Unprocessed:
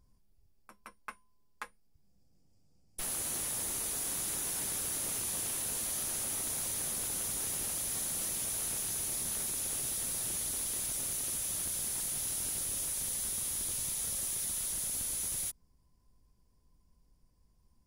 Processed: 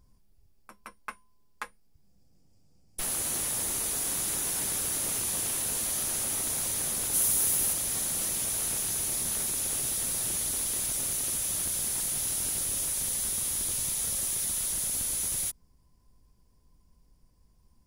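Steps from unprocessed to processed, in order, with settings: 7.13–7.72 s: treble shelf 7.7 kHz -> 12 kHz +9.5 dB; trim +5 dB

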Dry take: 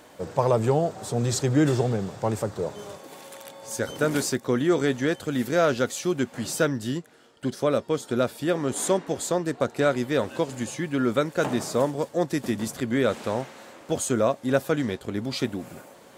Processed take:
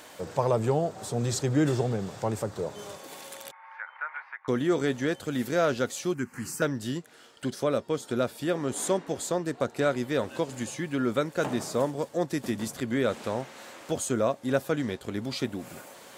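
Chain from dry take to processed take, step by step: 3.51–4.48 s: elliptic band-pass 880–2200 Hz, stop band 60 dB; 6.14–6.62 s: static phaser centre 1.5 kHz, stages 4; tape noise reduction on one side only encoder only; trim -3.5 dB

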